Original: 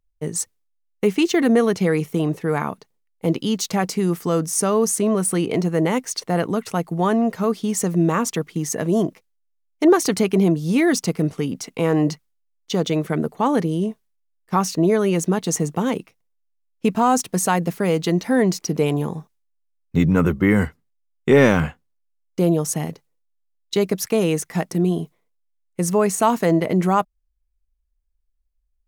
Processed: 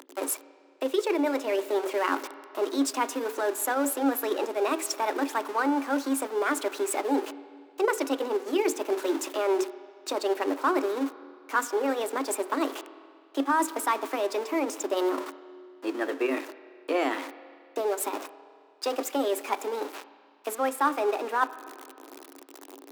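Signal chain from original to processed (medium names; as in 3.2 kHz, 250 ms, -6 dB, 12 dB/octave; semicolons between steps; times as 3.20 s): jump at every zero crossing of -23.5 dBFS; treble shelf 9 kHz -4 dB; hum notches 50/100/150/200/250/300/350/400/450 Hz; transient shaper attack +5 dB, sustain -7 dB; reverse; compression 6:1, threshold -19 dBFS, peak gain reduction 13 dB; reverse; rippled Chebyshev high-pass 210 Hz, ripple 6 dB; spring tank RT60 2.8 s, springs 31/45 ms, chirp 45 ms, DRR 14.5 dB; tape speed +26%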